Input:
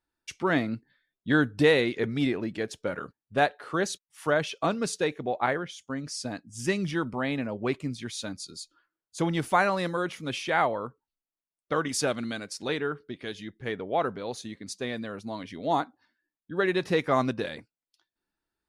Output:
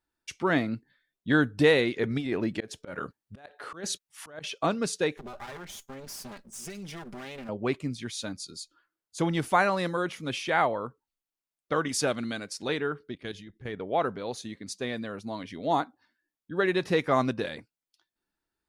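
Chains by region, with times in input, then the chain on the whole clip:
2.1–4.44 negative-ratio compressor -28 dBFS, ratio -0.5 + auto swell 0.179 s
5.17–7.49 minimum comb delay 5 ms + high shelf 5000 Hz +8 dB + compressor 5:1, threshold -38 dBFS
13.14–13.8 level quantiser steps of 12 dB + low shelf 150 Hz +8.5 dB
whole clip: dry

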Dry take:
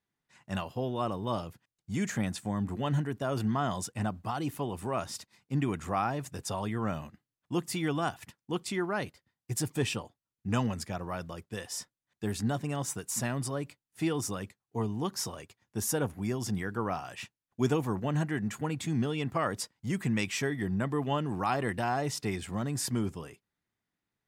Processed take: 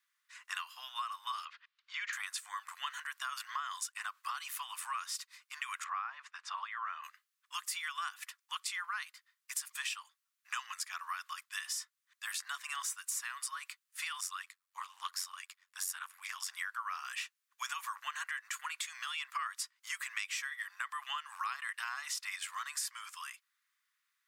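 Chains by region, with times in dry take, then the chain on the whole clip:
1.45–2.13 LPF 4000 Hz 24 dB/oct + three-band squash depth 40%
5.84–7.04 BPF 340–4300 Hz + tilt -4 dB/oct
14.2–16.51 notch 6200 Hz, Q 13 + ring modulator 46 Hz + Doppler distortion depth 0.11 ms
whole clip: Chebyshev high-pass 1100 Hz, order 5; compressor 5:1, threshold -45 dBFS; gain +8.5 dB

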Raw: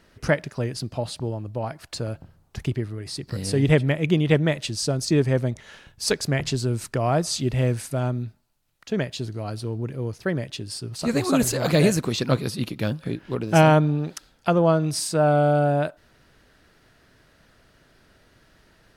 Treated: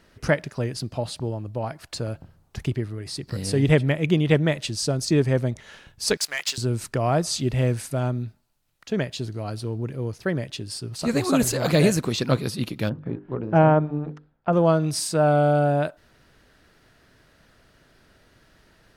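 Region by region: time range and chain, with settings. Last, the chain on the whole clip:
6.17–6.58 Bessel high-pass 2100 Hz + sample leveller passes 2
12.89–14.53 G.711 law mismatch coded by A + LPF 1300 Hz + notches 50/100/150/200/250/300/350/400/450/500 Hz
whole clip: dry

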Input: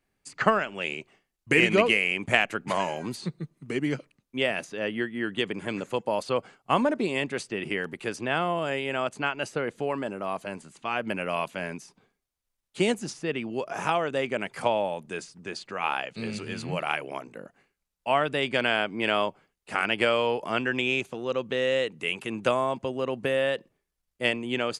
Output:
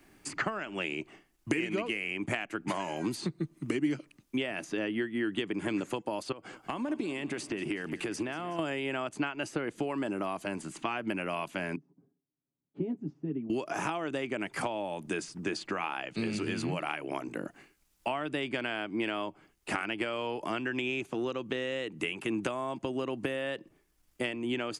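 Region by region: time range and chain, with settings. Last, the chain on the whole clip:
6.32–8.59 compressor, threshold -38 dBFS + feedback echo 0.185 s, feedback 58%, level -17.5 dB
11.76–13.5 ladder band-pass 210 Hz, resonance 35% + comb 7.3 ms, depth 67%
whole clip: compressor 6:1, threshold -35 dBFS; thirty-one-band EQ 315 Hz +10 dB, 500 Hz -5 dB, 4000 Hz -3 dB; three-band squash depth 40%; gain +4.5 dB

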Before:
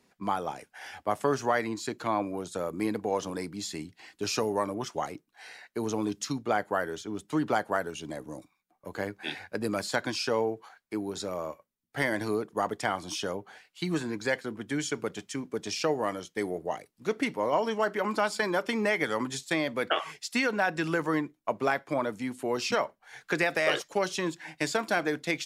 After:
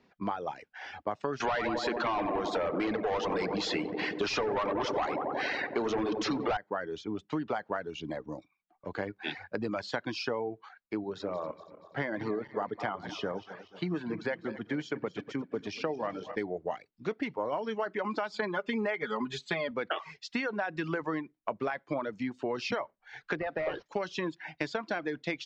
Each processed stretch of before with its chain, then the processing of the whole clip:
1.4–6.57 LPF 12000 Hz + darkening echo 92 ms, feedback 80%, low-pass 1600 Hz, level -8 dB + overdrive pedal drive 25 dB, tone 5600 Hz, clips at -12.5 dBFS
11.04–16.36 regenerating reverse delay 0.12 s, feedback 67%, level -12 dB + HPF 94 Hz + high shelf 3100 Hz -7.5 dB
18.34–19.71 notch 5500 Hz, Q 6.7 + comb 4.8 ms, depth 83% + upward compressor, threshold -29 dBFS
23.35–23.86 CVSD 32 kbps + LPF 1100 Hz 6 dB/oct
whole clip: reverb removal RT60 0.59 s; Bessel low-pass 3400 Hz, order 8; compressor, threshold -31 dBFS; gain +2 dB

